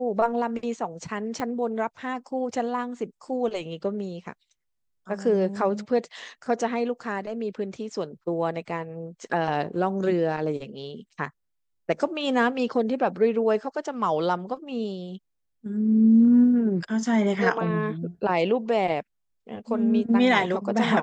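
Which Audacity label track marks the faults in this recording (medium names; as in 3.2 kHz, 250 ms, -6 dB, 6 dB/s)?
1.400000	1.400000	pop -16 dBFS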